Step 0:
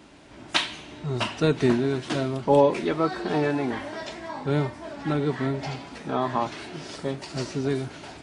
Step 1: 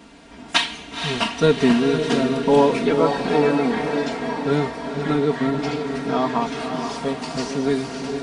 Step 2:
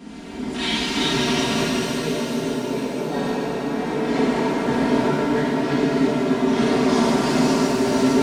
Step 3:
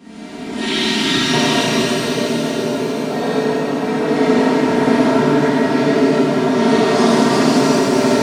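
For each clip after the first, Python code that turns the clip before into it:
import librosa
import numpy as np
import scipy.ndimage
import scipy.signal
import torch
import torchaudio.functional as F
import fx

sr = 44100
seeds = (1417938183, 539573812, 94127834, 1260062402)

y1 = x + 0.71 * np.pad(x, (int(4.3 * sr / 1000.0), 0))[:len(x)]
y1 = fx.echo_diffused(y1, sr, ms=509, feedback_pct=53, wet_db=-6)
y1 = y1 * librosa.db_to_amplitude(3.0)
y2 = fx.peak_eq(y1, sr, hz=210.0, db=9.5, octaves=1.0)
y2 = fx.over_compress(y2, sr, threshold_db=-25.0, ratio=-1.0)
y2 = fx.rev_shimmer(y2, sr, seeds[0], rt60_s=3.5, semitones=7, shimmer_db=-8, drr_db=-9.5)
y2 = y2 * librosa.db_to_amplitude(-8.5)
y3 = scipy.signal.sosfilt(scipy.signal.butter(2, 77.0, 'highpass', fs=sr, output='sos'), y2)
y3 = fx.rev_freeverb(y3, sr, rt60_s=1.3, hf_ratio=0.95, predelay_ms=5, drr_db=-8.0)
y3 = fx.spec_repair(y3, sr, seeds[1], start_s=0.69, length_s=0.62, low_hz=330.0, high_hz=1100.0, source='before')
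y3 = y3 * librosa.db_to_amplitude(-2.5)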